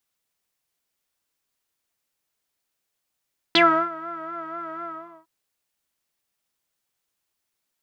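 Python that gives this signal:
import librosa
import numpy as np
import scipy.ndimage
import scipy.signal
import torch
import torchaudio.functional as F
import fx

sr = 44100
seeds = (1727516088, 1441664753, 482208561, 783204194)

y = fx.sub_patch_vibrato(sr, seeds[0], note=64, wave='saw', wave2='square', interval_st=12, detune_cents=17, level2_db=-9.0, sub_db=-24.0, noise_db=-16.5, kind='lowpass', cutoff_hz=1100.0, q=11.0, env_oct=2.0, env_decay_s=0.08, env_sustain_pct=15, attack_ms=1.4, decay_s=0.34, sustain_db=-21.0, release_s=0.43, note_s=1.28, lfo_hz=4.1, vibrato_cents=57)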